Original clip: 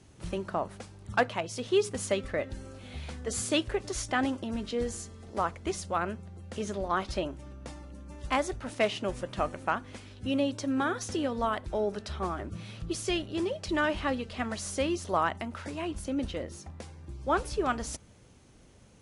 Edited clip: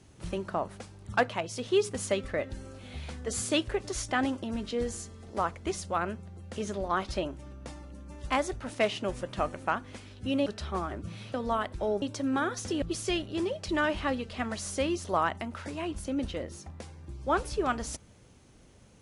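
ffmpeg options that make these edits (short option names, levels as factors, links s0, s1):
-filter_complex "[0:a]asplit=5[s0][s1][s2][s3][s4];[s0]atrim=end=10.462[s5];[s1]atrim=start=11.938:end=12.822[s6];[s2]atrim=start=11.258:end=11.942[s7];[s3]atrim=start=10.458:end=11.262[s8];[s4]atrim=start=12.818[s9];[s5][s6]acrossfade=d=0.004:c1=hsin:c2=hsin[s10];[s10][s7]acrossfade=d=0.004:c1=hsin:c2=hsin[s11];[s11][s8]acrossfade=d=0.004:c1=hsin:c2=hsin[s12];[s12][s9]acrossfade=d=0.004:c1=hsin:c2=hsin"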